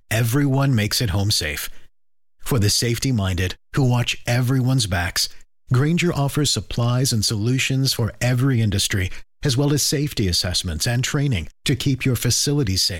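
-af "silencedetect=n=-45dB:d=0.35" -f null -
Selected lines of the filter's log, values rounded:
silence_start: 1.86
silence_end: 2.40 | silence_duration: 0.54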